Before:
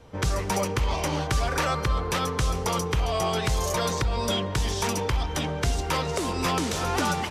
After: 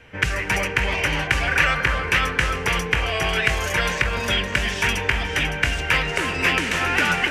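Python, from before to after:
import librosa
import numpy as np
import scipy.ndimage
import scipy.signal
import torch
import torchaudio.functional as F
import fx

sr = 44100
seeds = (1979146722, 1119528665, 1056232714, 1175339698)

y = fx.band_shelf(x, sr, hz=2100.0, db=15.5, octaves=1.2)
y = fx.echo_alternate(y, sr, ms=281, hz=1600.0, feedback_pct=55, wet_db=-4.5)
y = y * librosa.db_to_amplitude(-1.0)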